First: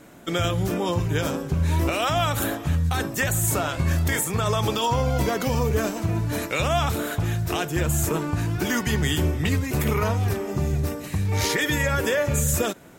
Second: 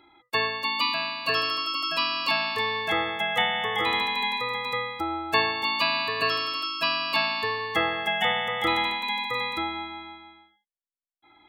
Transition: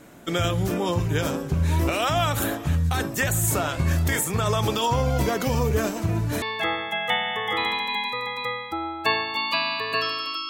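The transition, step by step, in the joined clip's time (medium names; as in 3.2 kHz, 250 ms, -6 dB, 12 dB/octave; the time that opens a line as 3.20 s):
first
6.42 s: go over to second from 2.70 s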